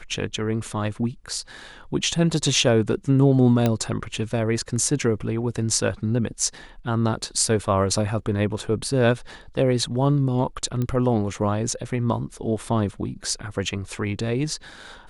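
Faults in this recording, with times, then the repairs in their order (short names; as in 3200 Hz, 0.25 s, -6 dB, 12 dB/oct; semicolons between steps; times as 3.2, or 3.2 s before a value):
3.66 pop -8 dBFS
10.82 pop -15 dBFS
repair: de-click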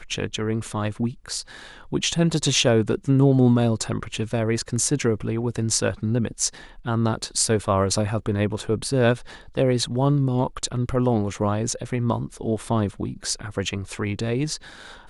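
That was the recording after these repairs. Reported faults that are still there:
none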